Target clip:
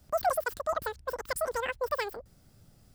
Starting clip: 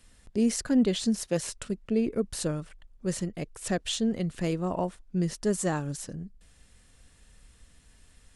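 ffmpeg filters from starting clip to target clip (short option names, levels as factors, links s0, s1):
-af "aexciter=amount=16:drive=8.5:freq=10000,asetrate=125244,aresample=44100,volume=0.708"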